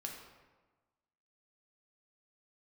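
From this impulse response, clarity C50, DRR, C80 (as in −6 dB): 3.5 dB, 0.0 dB, 6.0 dB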